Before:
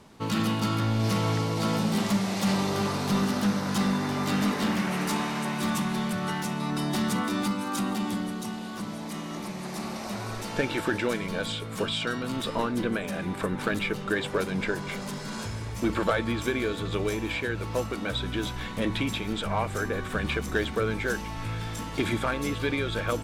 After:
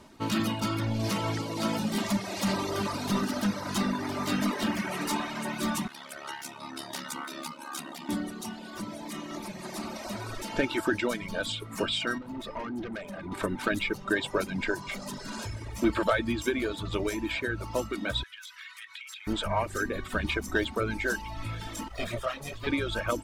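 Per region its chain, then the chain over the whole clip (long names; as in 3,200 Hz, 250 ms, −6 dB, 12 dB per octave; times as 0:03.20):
0:05.87–0:08.09: high-pass filter 830 Hz 6 dB per octave + ring modulation 35 Hz
0:12.18–0:13.32: high-shelf EQ 3,100 Hz −10.5 dB + tube saturation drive 31 dB, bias 0.4
0:18.23–0:19.27: inverse Chebyshev high-pass filter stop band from 690 Hz + high-shelf EQ 4,600 Hz −4 dB + downward compressor 12 to 1, threshold −38 dBFS
0:21.88–0:22.67: lower of the sound and its delayed copy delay 1.6 ms + micro pitch shift up and down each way 21 cents
whole clip: reverb reduction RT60 1.2 s; comb filter 3.2 ms, depth 41%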